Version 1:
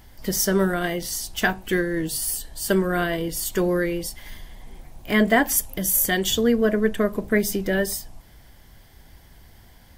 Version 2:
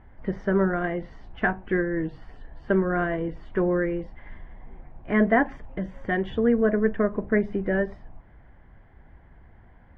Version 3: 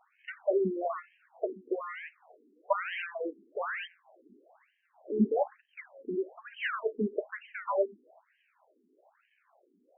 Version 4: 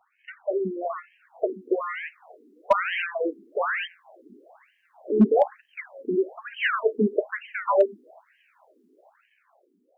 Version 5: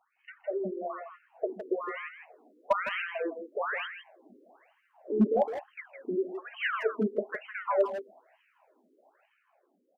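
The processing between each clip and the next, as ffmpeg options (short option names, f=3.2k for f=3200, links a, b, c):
-af "lowpass=f=1.9k:w=0.5412,lowpass=f=1.9k:w=1.3066,volume=-1.5dB"
-af "equalizer=f=160:t=o:w=0.67:g=9,equalizer=f=630:t=o:w=0.67:g=9,equalizer=f=2.5k:t=o:w=0.67:g=-10,acrusher=samples=19:mix=1:aa=0.000001:lfo=1:lforange=19:lforate=1.2,afftfilt=real='re*between(b*sr/1024,300*pow(2300/300,0.5+0.5*sin(2*PI*1.1*pts/sr))/1.41,300*pow(2300/300,0.5+0.5*sin(2*PI*1.1*pts/sr))*1.41)':imag='im*between(b*sr/1024,300*pow(2300/300,0.5+0.5*sin(2*PI*1.1*pts/sr))/1.41,300*pow(2300/300,0.5+0.5*sin(2*PI*1.1*pts/sr))*1.41)':win_size=1024:overlap=0.75,volume=-4.5dB"
-filter_complex "[0:a]acrossover=split=110[a][b];[b]dynaudnorm=f=340:g=7:m=9dB[c];[a][c]amix=inputs=2:normalize=0,volume=9dB,asoftclip=hard,volume=-9dB"
-filter_complex "[0:a]asplit=2[a][b];[b]adelay=160,highpass=300,lowpass=3.4k,asoftclip=type=hard:threshold=-17.5dB,volume=-8dB[c];[a][c]amix=inputs=2:normalize=0,volume=-6.5dB"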